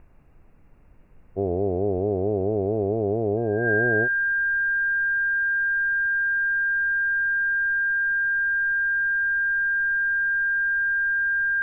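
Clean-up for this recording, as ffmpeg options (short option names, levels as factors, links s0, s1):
-af "bandreject=f=1600:w=30,agate=range=0.0891:threshold=0.00891"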